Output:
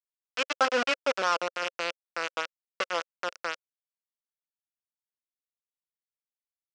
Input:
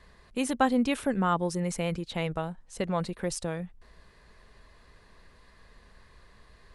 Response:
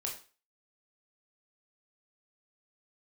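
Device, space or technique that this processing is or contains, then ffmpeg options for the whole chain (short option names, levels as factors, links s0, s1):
hand-held game console: -af "acrusher=bits=3:mix=0:aa=0.000001,highpass=500,equalizer=f=530:t=q:w=4:g=7,equalizer=f=830:t=q:w=4:g=-4,equalizer=f=1400:t=q:w=4:g=8,equalizer=f=2700:t=q:w=4:g=5,equalizer=f=3900:t=q:w=4:g=-3,equalizer=f=5500:t=q:w=4:g=3,lowpass=f=5900:w=0.5412,lowpass=f=5900:w=1.3066,volume=0.794"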